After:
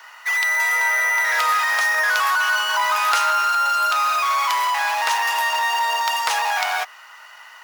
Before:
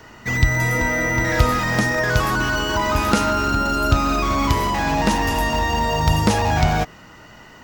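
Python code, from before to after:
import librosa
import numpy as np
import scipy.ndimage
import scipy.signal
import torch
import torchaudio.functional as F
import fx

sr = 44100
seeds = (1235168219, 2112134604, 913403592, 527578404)

p1 = fx.sample_hold(x, sr, seeds[0], rate_hz=12000.0, jitter_pct=0)
p2 = x + F.gain(torch.from_numpy(p1), -7.0).numpy()
p3 = scipy.signal.sosfilt(scipy.signal.butter(4, 900.0, 'highpass', fs=sr, output='sos'), p2)
y = F.gain(torch.from_numpy(p3), 1.0).numpy()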